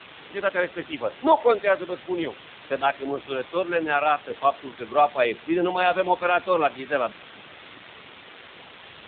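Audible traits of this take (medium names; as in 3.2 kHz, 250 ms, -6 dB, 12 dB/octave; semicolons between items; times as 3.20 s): a quantiser's noise floor 6-bit, dither triangular; AMR-NB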